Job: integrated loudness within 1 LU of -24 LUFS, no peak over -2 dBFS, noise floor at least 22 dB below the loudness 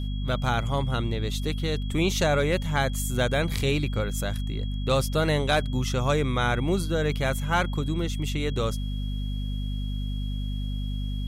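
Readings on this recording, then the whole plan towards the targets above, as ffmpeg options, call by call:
hum 50 Hz; harmonics up to 250 Hz; hum level -27 dBFS; steady tone 3300 Hz; tone level -44 dBFS; loudness -27.0 LUFS; peak -11.0 dBFS; loudness target -24.0 LUFS
-> -af "bandreject=f=50:t=h:w=4,bandreject=f=100:t=h:w=4,bandreject=f=150:t=h:w=4,bandreject=f=200:t=h:w=4,bandreject=f=250:t=h:w=4"
-af "bandreject=f=3.3k:w=30"
-af "volume=3dB"

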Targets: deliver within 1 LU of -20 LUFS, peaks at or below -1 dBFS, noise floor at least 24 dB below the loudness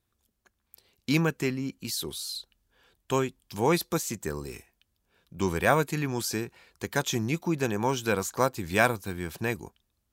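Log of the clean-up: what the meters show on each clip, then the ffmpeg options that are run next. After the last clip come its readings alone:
loudness -29.0 LUFS; peak -5.5 dBFS; loudness target -20.0 LUFS
-> -af "volume=9dB,alimiter=limit=-1dB:level=0:latency=1"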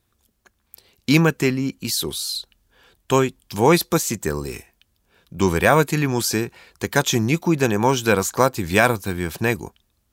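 loudness -20.5 LUFS; peak -1.0 dBFS; noise floor -69 dBFS

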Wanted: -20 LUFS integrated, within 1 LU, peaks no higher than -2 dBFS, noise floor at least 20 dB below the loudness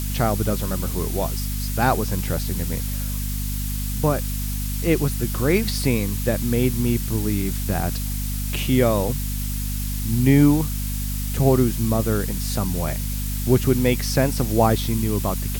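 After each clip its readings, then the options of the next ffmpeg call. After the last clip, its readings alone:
hum 50 Hz; harmonics up to 250 Hz; hum level -24 dBFS; noise floor -26 dBFS; noise floor target -43 dBFS; loudness -22.5 LUFS; peak -4.5 dBFS; loudness target -20.0 LUFS
-> -af "bandreject=f=50:t=h:w=6,bandreject=f=100:t=h:w=6,bandreject=f=150:t=h:w=6,bandreject=f=200:t=h:w=6,bandreject=f=250:t=h:w=6"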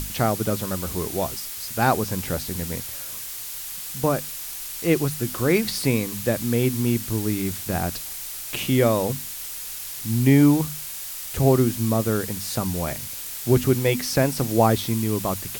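hum none; noise floor -34 dBFS; noise floor target -44 dBFS
-> -af "afftdn=nr=10:nf=-34"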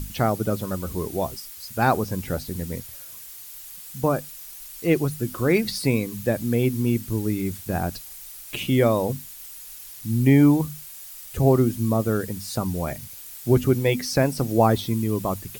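noise floor -41 dBFS; noise floor target -44 dBFS
-> -af "afftdn=nr=6:nf=-41"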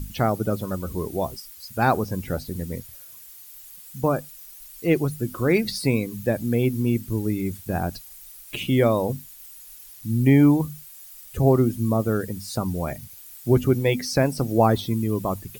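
noise floor -45 dBFS; loudness -23.5 LUFS; peak -6.0 dBFS; loudness target -20.0 LUFS
-> -af "volume=3.5dB"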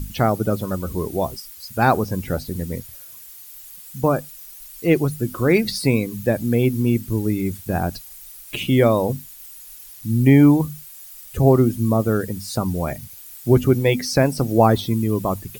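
loudness -20.0 LUFS; peak -2.5 dBFS; noise floor -41 dBFS

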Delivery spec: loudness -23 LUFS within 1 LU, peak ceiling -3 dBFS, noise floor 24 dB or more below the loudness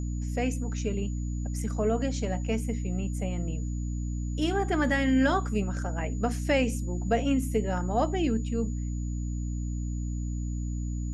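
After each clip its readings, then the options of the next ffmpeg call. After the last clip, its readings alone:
hum 60 Hz; harmonics up to 300 Hz; hum level -29 dBFS; steady tone 6900 Hz; tone level -50 dBFS; loudness -29.5 LUFS; peak -13.0 dBFS; loudness target -23.0 LUFS
-> -af "bandreject=f=60:t=h:w=6,bandreject=f=120:t=h:w=6,bandreject=f=180:t=h:w=6,bandreject=f=240:t=h:w=6,bandreject=f=300:t=h:w=6"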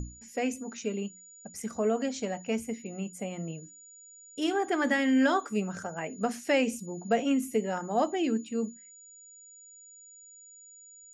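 hum none; steady tone 6900 Hz; tone level -50 dBFS
-> -af "bandreject=f=6.9k:w=30"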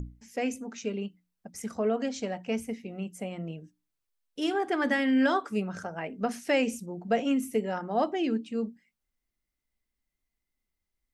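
steady tone none; loudness -30.5 LUFS; peak -14.0 dBFS; loudness target -23.0 LUFS
-> -af "volume=7.5dB"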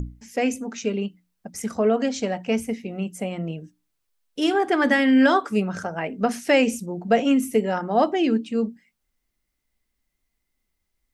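loudness -23.0 LUFS; peak -6.5 dBFS; noise floor -78 dBFS

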